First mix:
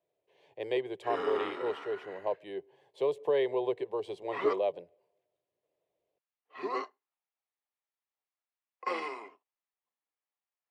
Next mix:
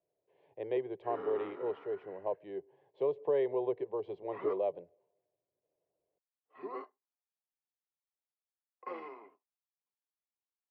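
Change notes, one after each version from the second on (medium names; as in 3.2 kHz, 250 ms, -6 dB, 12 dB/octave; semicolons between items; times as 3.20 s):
background -4.5 dB; master: add tape spacing loss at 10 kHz 45 dB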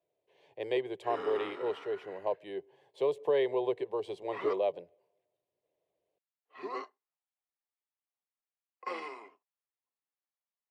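master: remove tape spacing loss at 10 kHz 45 dB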